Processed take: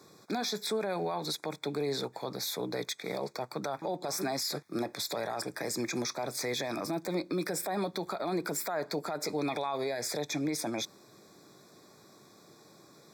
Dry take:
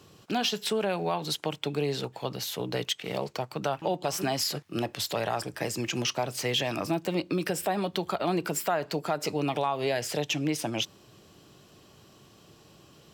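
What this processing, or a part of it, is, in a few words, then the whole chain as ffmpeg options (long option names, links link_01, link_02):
PA system with an anti-feedback notch: -filter_complex "[0:a]highpass=190,asuperstop=centerf=2900:order=20:qfactor=3.3,alimiter=level_in=0.5dB:limit=-24dB:level=0:latency=1:release=17,volume=-0.5dB,asettb=1/sr,asplit=3[link_01][link_02][link_03];[link_01]atrim=end=9.384[link_04];[link_02]atrim=start=9.38:end=9.78,asetpts=PTS-STARTPTS,afade=type=in:duration=0.004:curve=qsin,afade=type=out:start_time=0.396:duration=0.004:curve=qsin,equalizer=frequency=3000:width=0.77:gain=5.5[link_05];[link_03]atrim=start=9.776[link_06];[link_04][link_05]acrossfade=duration=0.004:curve1=hsin:curve2=qsin[link_07];[link_07][link_06]acrossfade=duration=0.004:curve1=qsin:curve2=hsin"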